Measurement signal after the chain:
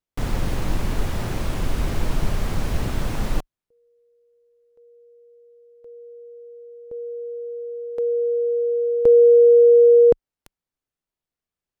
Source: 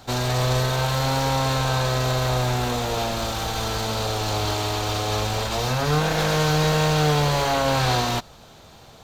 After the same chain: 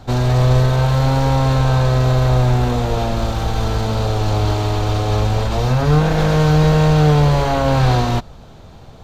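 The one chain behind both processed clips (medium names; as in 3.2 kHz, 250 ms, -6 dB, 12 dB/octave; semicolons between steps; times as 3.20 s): tilt EQ -2.5 dB/octave; trim +2.5 dB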